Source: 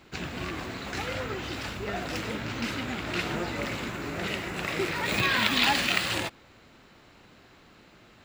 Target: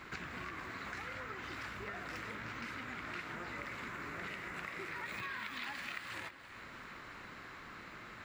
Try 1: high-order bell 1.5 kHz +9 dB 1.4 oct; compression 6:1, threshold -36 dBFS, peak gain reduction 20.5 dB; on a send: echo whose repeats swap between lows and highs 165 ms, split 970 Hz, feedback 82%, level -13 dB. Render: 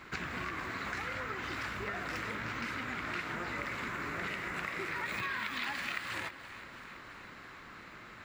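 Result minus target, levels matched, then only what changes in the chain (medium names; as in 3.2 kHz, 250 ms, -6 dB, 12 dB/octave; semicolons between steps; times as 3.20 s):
compression: peak gain reduction -6 dB
change: compression 6:1, threshold -43 dBFS, peak gain reduction 26.5 dB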